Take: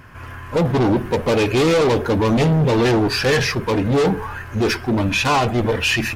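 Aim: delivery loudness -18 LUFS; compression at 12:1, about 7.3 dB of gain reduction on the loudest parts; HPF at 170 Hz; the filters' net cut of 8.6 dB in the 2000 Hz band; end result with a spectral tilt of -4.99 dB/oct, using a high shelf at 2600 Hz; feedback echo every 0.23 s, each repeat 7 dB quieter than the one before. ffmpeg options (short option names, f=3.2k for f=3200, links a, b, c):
-af "highpass=170,equalizer=f=2k:t=o:g=-8,highshelf=f=2.6k:g=-7,acompressor=threshold=-21dB:ratio=12,aecho=1:1:230|460|690|920|1150:0.447|0.201|0.0905|0.0407|0.0183,volume=7.5dB"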